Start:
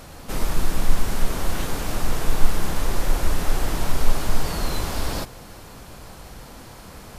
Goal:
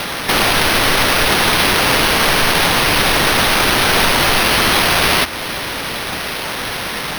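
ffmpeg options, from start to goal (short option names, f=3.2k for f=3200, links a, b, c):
-filter_complex "[0:a]aemphasis=mode=production:type=riaa,asplit=2[a][b];[b]acompressor=threshold=-31dB:ratio=6,volume=2dB[c];[a][c]amix=inputs=2:normalize=0,acrusher=samples=6:mix=1:aa=0.000001,volume=6.5dB"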